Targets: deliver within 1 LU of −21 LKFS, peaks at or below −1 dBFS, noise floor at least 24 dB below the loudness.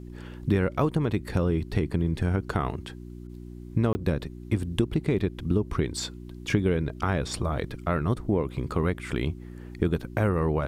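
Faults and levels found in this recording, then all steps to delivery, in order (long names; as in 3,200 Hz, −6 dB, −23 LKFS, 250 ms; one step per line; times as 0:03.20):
number of dropouts 1; longest dropout 20 ms; mains hum 60 Hz; hum harmonics up to 360 Hz; level of the hum −39 dBFS; integrated loudness −28.0 LKFS; sample peak −9.5 dBFS; target loudness −21.0 LKFS
→ repair the gap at 0:03.93, 20 ms
hum removal 60 Hz, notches 6
level +7 dB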